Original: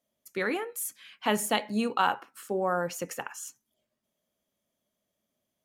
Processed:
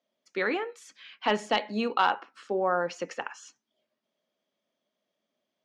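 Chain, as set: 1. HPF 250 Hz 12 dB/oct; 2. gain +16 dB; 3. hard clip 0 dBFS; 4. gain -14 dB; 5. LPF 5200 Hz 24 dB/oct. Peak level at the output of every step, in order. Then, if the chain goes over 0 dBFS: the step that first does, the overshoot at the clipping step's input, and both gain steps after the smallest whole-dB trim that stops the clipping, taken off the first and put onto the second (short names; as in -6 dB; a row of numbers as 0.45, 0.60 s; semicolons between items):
-10.0, +6.0, 0.0, -14.0, -13.0 dBFS; step 2, 6.0 dB; step 2 +10 dB, step 4 -8 dB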